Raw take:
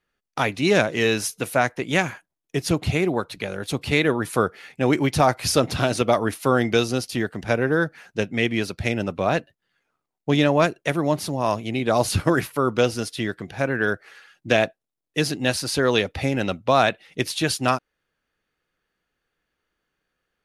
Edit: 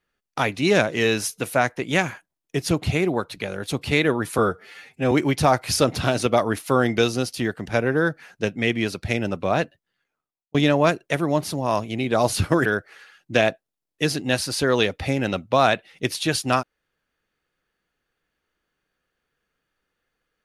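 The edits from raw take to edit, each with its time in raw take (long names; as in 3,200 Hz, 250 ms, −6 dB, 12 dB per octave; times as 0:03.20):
0:04.38–0:04.87: time-stretch 1.5×
0:09.38–0:10.30: fade out
0:12.41–0:13.81: remove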